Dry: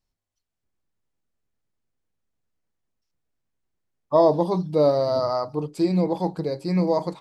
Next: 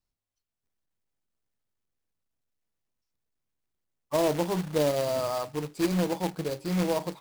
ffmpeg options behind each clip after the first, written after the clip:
-filter_complex "[0:a]acrossover=split=460|3000[s0][s1][s2];[s1]acompressor=threshold=0.0891:ratio=6[s3];[s0][s3][s2]amix=inputs=3:normalize=0,acrusher=bits=2:mode=log:mix=0:aa=0.000001,volume=0.531"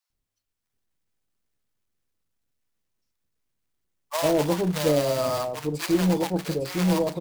-filter_complex "[0:a]acrossover=split=730[s0][s1];[s0]adelay=100[s2];[s2][s1]amix=inputs=2:normalize=0,volume=1.78"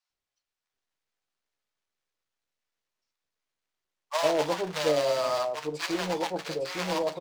-filter_complex "[0:a]acrossover=split=430 7000:gain=0.178 1 0.2[s0][s1][s2];[s0][s1][s2]amix=inputs=3:normalize=0,asplit=2[s3][s4];[s4]adelay=13,volume=0.282[s5];[s3][s5]amix=inputs=2:normalize=0"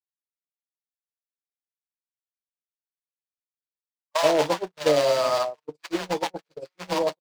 -af "agate=range=0.00251:threshold=0.0398:ratio=16:detection=peak,dynaudnorm=f=140:g=3:m=1.78"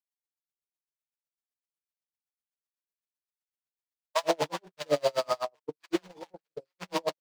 -af "aeval=exprs='val(0)*pow(10,-37*(0.5-0.5*cos(2*PI*7.9*n/s))/20)':c=same"

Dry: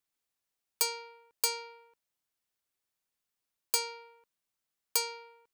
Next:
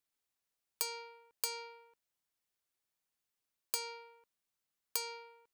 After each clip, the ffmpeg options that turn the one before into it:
-af "acompressor=threshold=0.0316:ratio=6,volume=0.794"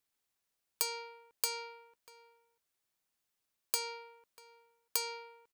-filter_complex "[0:a]asplit=2[s0][s1];[s1]adelay=641.4,volume=0.141,highshelf=f=4000:g=-14.4[s2];[s0][s2]amix=inputs=2:normalize=0,volume=1.41"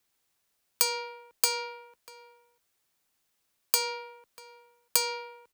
-af "afreqshift=15,volume=2.66"

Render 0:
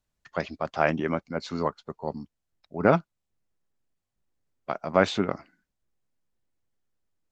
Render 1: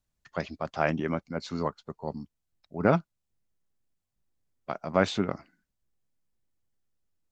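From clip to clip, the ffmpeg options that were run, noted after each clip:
-af "bass=f=250:g=4,treble=f=4000:g=3,volume=0.668"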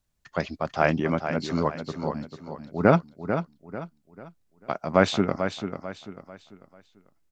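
-af "aecho=1:1:443|886|1329|1772:0.376|0.135|0.0487|0.0175,volume=1.68"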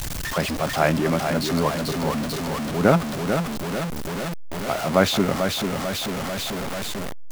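-af "aeval=exprs='val(0)+0.5*0.075*sgn(val(0))':c=same"

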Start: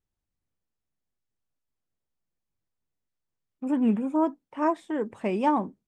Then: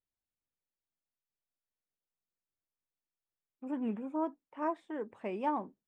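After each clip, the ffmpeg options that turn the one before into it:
-af "bass=f=250:g=-7,treble=f=4000:g=-10,volume=0.376"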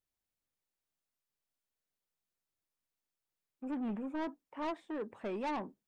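-af "asoftclip=type=tanh:threshold=0.0168,volume=1.33"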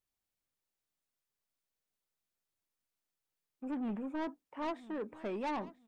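-af "aecho=1:1:986|1972:0.126|0.0277"

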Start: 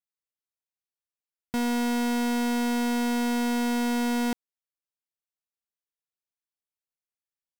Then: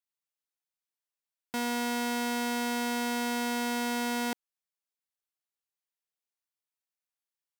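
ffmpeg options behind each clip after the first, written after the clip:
-af "highpass=f=520:p=1"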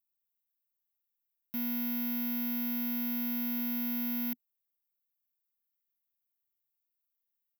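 -af "firequalizer=gain_entry='entry(240,0);entry(350,-22);entry(2200,-11);entry(7100,-19);entry(14000,13)':delay=0.05:min_phase=1,volume=0.891"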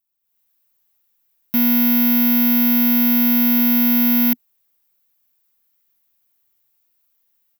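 -af "dynaudnorm=f=210:g=3:m=3.98,volume=2"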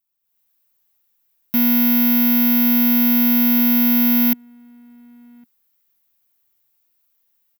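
-filter_complex "[0:a]asplit=2[s0][s1];[s1]adelay=1108,volume=0.0447,highshelf=f=4000:g=-24.9[s2];[s0][s2]amix=inputs=2:normalize=0"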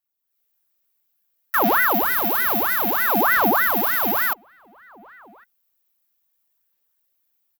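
-af "aphaser=in_gain=1:out_gain=1:delay=2.9:decay=0.39:speed=0.59:type=sinusoidal,aeval=exprs='val(0)*sin(2*PI*1100*n/s+1100*0.6/3.3*sin(2*PI*3.3*n/s))':c=same,volume=0.794"

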